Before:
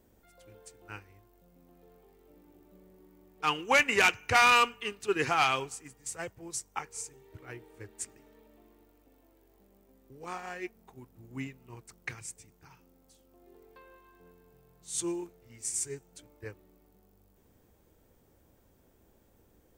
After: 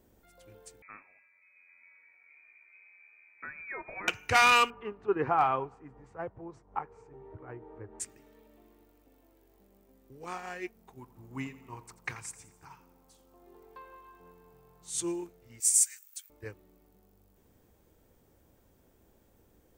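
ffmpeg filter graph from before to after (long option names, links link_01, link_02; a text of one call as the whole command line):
ffmpeg -i in.wav -filter_complex "[0:a]asettb=1/sr,asplit=3[link_01][link_02][link_03];[link_01]atrim=end=0.824[link_04];[link_02]atrim=start=0.82:end=4.08,asetpts=PTS-STARTPTS,afade=type=in:duration=0.004:curve=qsin,afade=type=out:start_time=3.256:duration=0.004:curve=qsin,highpass=frequency=150:width=0.5412,highpass=frequency=150:width=1.3066,acompressor=threshold=-42dB:ratio=3:attack=3.2:release=140:knee=1:detection=peak,lowpass=frequency=2300:width_type=q:width=0.5098,lowpass=frequency=2300:width_type=q:width=0.6013,lowpass=frequency=2300:width_type=q:width=0.9,lowpass=frequency=2300:width_type=q:width=2.563,afreqshift=-2700[link_05];[link_03]atrim=start=4.076[link_06];[link_04][link_05]acrossfade=duration=0.004:curve1=hsin:curve2=qsin[link_07];[link_07][link_06]acrossfade=duration=0.004:curve1=qsin:curve2=hsin,asettb=1/sr,asplit=3[link_08][link_09][link_10];[link_08]atrim=end=4.704[link_11];[link_09]atrim=start=4.7:end=8,asetpts=PTS-STARTPTS,afade=type=in:duration=0.004:curve=qsin,afade=type=out:start_time=3.296:duration=0.004:curve=qsin,acompressor=mode=upward:threshold=-42dB:ratio=2.5:attack=3.2:release=140:knee=2.83:detection=peak,lowpass=frequency=1000:width_type=q:width=1.5,asoftclip=type=hard:threshold=-16dB[link_12];[link_10]atrim=start=7.996[link_13];[link_11][link_12]acrossfade=duration=0.004:curve1=hsin:curve2=qsin[link_14];[link_14][link_13]acrossfade=duration=0.004:curve1=qsin:curve2=hsin,asettb=1/sr,asplit=3[link_15][link_16][link_17];[link_15]atrim=end=10.994[link_18];[link_16]atrim=start=10.99:end=14.9,asetpts=PTS-STARTPTS,afade=type=in:duration=0.004:curve=qsin,afade=type=out:start_time=3.906:duration=0.004:curve=qsin,equalizer=frequency=1000:width=2:gain=9.5,aecho=1:1:86|172|258|344|430:0.158|0.0824|0.0429|0.0223|0.0116,atrim=end_sample=172431[link_19];[link_17]atrim=start=14.896[link_20];[link_18][link_19]acrossfade=duration=0.004:curve1=hsin:curve2=qsin[link_21];[link_21][link_20]acrossfade=duration=0.004:curve1=qsin:curve2=hsin,asettb=1/sr,asplit=3[link_22][link_23][link_24];[link_22]atrim=end=15.604[link_25];[link_23]atrim=start=15.6:end=16.3,asetpts=PTS-STARTPTS,afade=type=in:duration=0.004:curve=qsin,afade=type=out:start_time=0.696:duration=0.004:curve=qsin,highpass=frequency=1500:width=0.5412,highpass=frequency=1500:width=1.3066,aemphasis=mode=production:type=bsi[link_26];[link_24]atrim=start=16.296[link_27];[link_25][link_26]acrossfade=duration=0.004:curve1=hsin:curve2=qsin[link_28];[link_28][link_27]acrossfade=duration=0.004:curve1=qsin:curve2=hsin" out.wav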